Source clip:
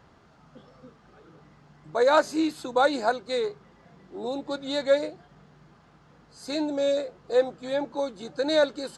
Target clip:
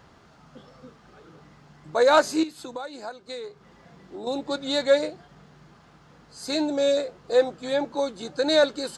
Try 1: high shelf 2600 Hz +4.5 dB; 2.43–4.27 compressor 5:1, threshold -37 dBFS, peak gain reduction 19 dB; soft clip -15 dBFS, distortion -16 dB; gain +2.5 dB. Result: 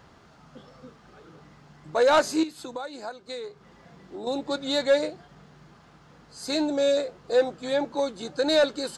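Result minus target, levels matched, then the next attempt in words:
soft clip: distortion +12 dB
high shelf 2600 Hz +4.5 dB; 2.43–4.27 compressor 5:1, threshold -37 dBFS, peak gain reduction 19 dB; soft clip -7.5 dBFS, distortion -28 dB; gain +2.5 dB

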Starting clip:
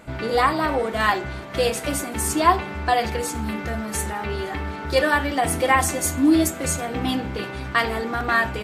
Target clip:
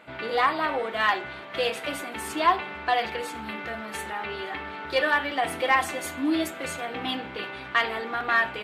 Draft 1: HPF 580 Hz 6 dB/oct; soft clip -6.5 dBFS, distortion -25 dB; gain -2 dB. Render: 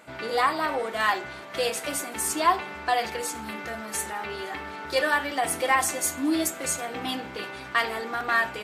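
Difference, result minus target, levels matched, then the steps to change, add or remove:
8000 Hz band +11.5 dB
add after HPF: resonant high shelf 4600 Hz -10 dB, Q 1.5

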